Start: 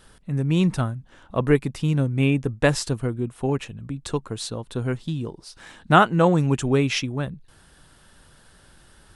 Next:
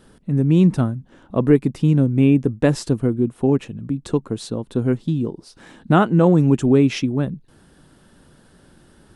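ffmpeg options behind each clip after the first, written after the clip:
-filter_complex "[0:a]equalizer=f=260:t=o:w=2.4:g=13,asplit=2[s0][s1];[s1]alimiter=limit=0.562:level=0:latency=1:release=99,volume=0.891[s2];[s0][s2]amix=inputs=2:normalize=0,volume=0.355"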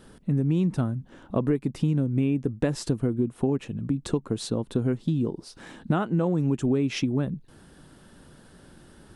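-af "acompressor=threshold=0.0891:ratio=6"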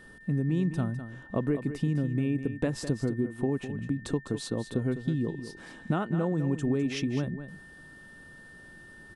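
-af "aeval=exprs='val(0)+0.00447*sin(2*PI*1800*n/s)':c=same,aecho=1:1:205:0.282,volume=0.631"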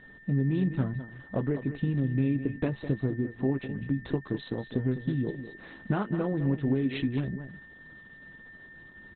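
-filter_complex "[0:a]asplit=2[s0][s1];[s1]adelay=15,volume=0.355[s2];[s0][s2]amix=inputs=2:normalize=0" -ar 48000 -c:a libopus -b:a 8k

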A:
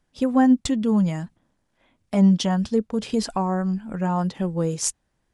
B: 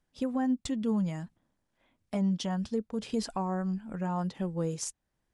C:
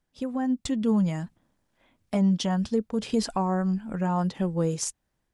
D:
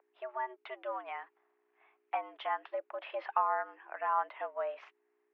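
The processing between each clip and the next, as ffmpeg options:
-af "alimiter=limit=0.2:level=0:latency=1:release=370,volume=0.422"
-af "dynaudnorm=f=240:g=5:m=2"
-af "aeval=exprs='val(0)+0.0112*(sin(2*PI*60*n/s)+sin(2*PI*2*60*n/s)/2+sin(2*PI*3*60*n/s)/3+sin(2*PI*4*60*n/s)/4+sin(2*PI*5*60*n/s)/5)':c=same,highpass=f=580:t=q:w=0.5412,highpass=f=580:t=q:w=1.307,lowpass=f=2500:t=q:w=0.5176,lowpass=f=2500:t=q:w=0.7071,lowpass=f=2500:t=q:w=1.932,afreqshift=120"

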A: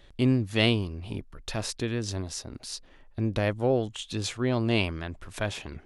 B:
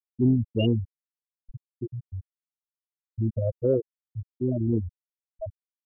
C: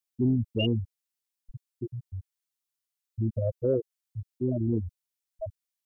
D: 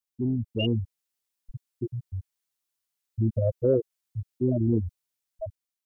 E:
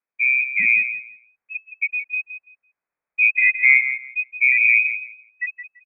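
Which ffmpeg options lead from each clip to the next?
-af "afftfilt=real='re*gte(hypot(re,im),0.282)':imag='im*gte(hypot(re,im),0.282)':win_size=1024:overlap=0.75,acontrast=83,volume=0.631"
-filter_complex "[0:a]highshelf=f=2000:g=11,asplit=2[s0][s1];[s1]alimiter=limit=0.141:level=0:latency=1,volume=1.26[s2];[s0][s2]amix=inputs=2:normalize=0,volume=0.355"
-af "dynaudnorm=f=280:g=5:m=2.11,volume=0.708"
-af "aecho=1:1:168|336|504:0.299|0.0567|0.0108,lowpass=f=2200:t=q:w=0.5098,lowpass=f=2200:t=q:w=0.6013,lowpass=f=2200:t=q:w=0.9,lowpass=f=2200:t=q:w=2.563,afreqshift=-2600,volume=2.51"

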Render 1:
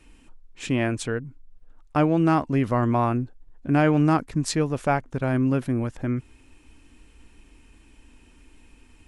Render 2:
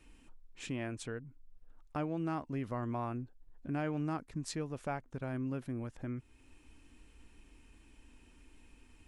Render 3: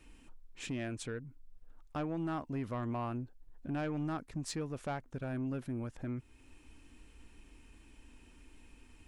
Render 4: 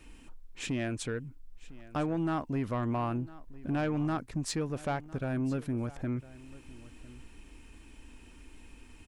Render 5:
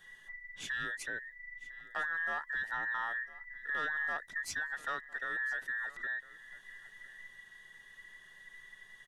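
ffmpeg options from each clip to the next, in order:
-af "acompressor=threshold=0.00794:ratio=1.5,volume=0.447"
-af "asoftclip=type=tanh:threshold=0.0266,volume=1.26"
-af "aecho=1:1:1004:0.106,volume=1.88"
-af "afftfilt=real='real(if(between(b,1,1012),(2*floor((b-1)/92)+1)*92-b,b),0)':imag='imag(if(between(b,1,1012),(2*floor((b-1)/92)+1)*92-b,b),0)*if(between(b,1,1012),-1,1)':win_size=2048:overlap=0.75,volume=0.562"

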